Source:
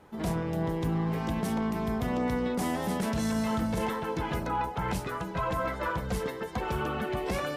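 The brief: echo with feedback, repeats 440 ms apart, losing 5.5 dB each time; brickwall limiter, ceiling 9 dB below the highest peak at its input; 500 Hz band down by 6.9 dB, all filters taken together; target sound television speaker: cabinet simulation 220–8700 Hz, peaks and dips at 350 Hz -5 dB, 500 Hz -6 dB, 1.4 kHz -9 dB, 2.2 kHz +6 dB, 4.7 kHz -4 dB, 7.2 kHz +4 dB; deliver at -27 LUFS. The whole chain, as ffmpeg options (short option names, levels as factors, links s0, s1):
-af "equalizer=f=500:t=o:g=-4,alimiter=level_in=1.88:limit=0.0631:level=0:latency=1,volume=0.531,highpass=f=220:w=0.5412,highpass=f=220:w=1.3066,equalizer=f=350:t=q:w=4:g=-5,equalizer=f=500:t=q:w=4:g=-6,equalizer=f=1400:t=q:w=4:g=-9,equalizer=f=2200:t=q:w=4:g=6,equalizer=f=4700:t=q:w=4:g=-4,equalizer=f=7200:t=q:w=4:g=4,lowpass=f=8700:w=0.5412,lowpass=f=8700:w=1.3066,aecho=1:1:440|880|1320|1760|2200|2640|3080:0.531|0.281|0.149|0.079|0.0419|0.0222|0.0118,volume=4.22"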